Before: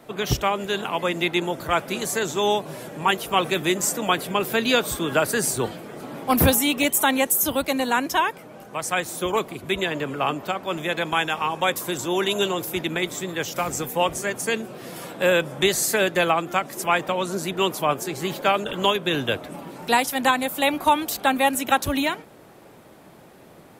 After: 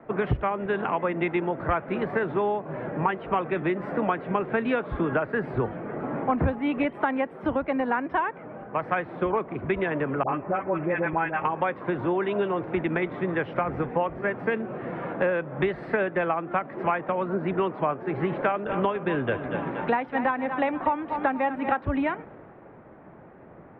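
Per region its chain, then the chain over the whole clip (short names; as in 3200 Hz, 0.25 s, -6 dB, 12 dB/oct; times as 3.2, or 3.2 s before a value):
10.23–11.45 Chebyshev low-pass 2500 Hz, order 3 + notch comb 230 Hz + dispersion highs, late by 63 ms, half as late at 830 Hz
18–21.82 feedback echo 0.237 s, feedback 44%, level -13 dB + mismatched tape noise reduction encoder only
whole clip: inverse Chebyshev low-pass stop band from 6300 Hz, stop band 60 dB; compressor 10:1, threshold -29 dBFS; three-band expander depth 40%; gain +7 dB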